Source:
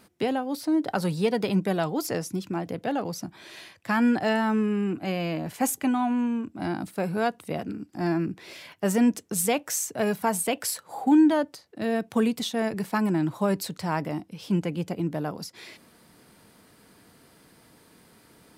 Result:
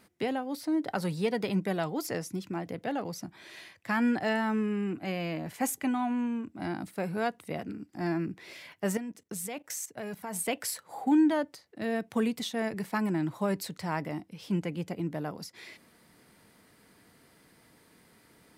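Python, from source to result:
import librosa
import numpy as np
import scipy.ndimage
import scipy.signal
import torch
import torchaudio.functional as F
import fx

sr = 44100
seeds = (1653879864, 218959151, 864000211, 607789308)

y = fx.peak_eq(x, sr, hz=2000.0, db=5.0, octaves=0.37)
y = fx.level_steps(y, sr, step_db=16, at=(8.97, 10.36))
y = y * librosa.db_to_amplitude(-5.0)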